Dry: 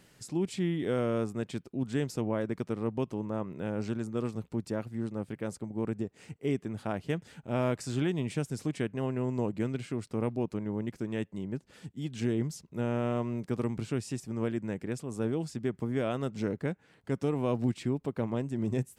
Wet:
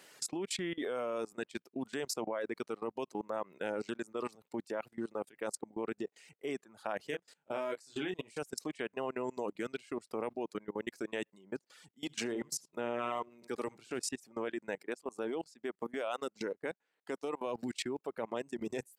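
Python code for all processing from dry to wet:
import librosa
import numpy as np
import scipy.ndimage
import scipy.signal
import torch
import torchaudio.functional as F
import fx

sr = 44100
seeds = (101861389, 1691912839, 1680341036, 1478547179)

y = fx.chain(x, sr, fx.doubler(ms=27.0, db=-4.5),
    fx.upward_expand(threshold_db=-38.0, expansion=1.5), at=(7.1, 8.39))
y = fx.chain(y, sr, fx.hum_notches(base_hz=50, count=3),
    fx.echo_single(ms=76, db=-10.5), at=(11.95, 14.02))
y = fx.chain(y, sr, fx.peak_eq(hz=130.0, db=-10.5, octaves=0.33),
    fx.transient(attack_db=2, sustain_db=-10), at=(14.83, 17.46))
y = fx.dereverb_blind(y, sr, rt60_s=1.9)
y = scipy.signal.sosfilt(scipy.signal.butter(2, 460.0, 'highpass', fs=sr, output='sos'), y)
y = fx.level_steps(y, sr, step_db=23)
y = y * 10.0 ** (10.0 / 20.0)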